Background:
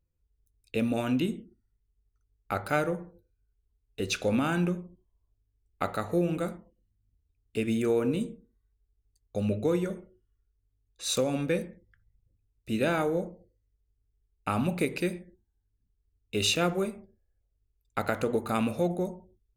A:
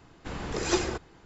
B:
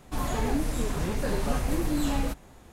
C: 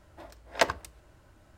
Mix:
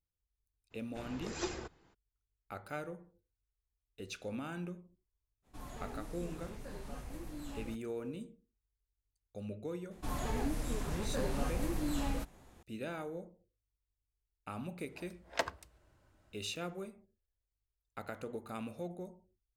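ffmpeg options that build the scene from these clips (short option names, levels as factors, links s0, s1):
-filter_complex "[2:a]asplit=2[s0][s1];[0:a]volume=0.188[s2];[1:a]atrim=end=1.25,asetpts=PTS-STARTPTS,volume=0.251,afade=t=in:d=0.02,afade=t=out:st=1.23:d=0.02,adelay=700[s3];[s0]atrim=end=2.72,asetpts=PTS-STARTPTS,volume=0.126,afade=t=in:d=0.05,afade=t=out:st=2.67:d=0.05,adelay=5420[s4];[s1]atrim=end=2.72,asetpts=PTS-STARTPTS,volume=0.398,afade=t=in:d=0.004:c=hsin,afade=t=out:st=2.716:d=0.004:c=hsin,adelay=9910[s5];[3:a]atrim=end=1.57,asetpts=PTS-STARTPTS,volume=0.316,afade=t=in:d=0.004:c=hsin,afade=t=out:st=1.566:d=0.004:c=hsin,adelay=14780[s6];[s2][s3][s4][s5][s6]amix=inputs=5:normalize=0"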